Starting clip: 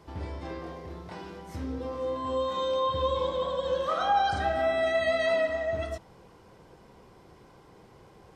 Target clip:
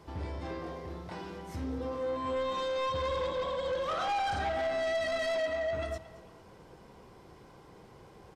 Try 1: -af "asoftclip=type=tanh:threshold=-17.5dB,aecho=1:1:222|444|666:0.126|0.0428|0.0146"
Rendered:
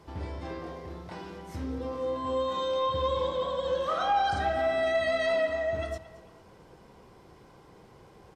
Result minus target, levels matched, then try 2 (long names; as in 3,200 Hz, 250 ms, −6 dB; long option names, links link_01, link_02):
soft clipping: distortion −14 dB
-af "asoftclip=type=tanh:threshold=-28.5dB,aecho=1:1:222|444|666:0.126|0.0428|0.0146"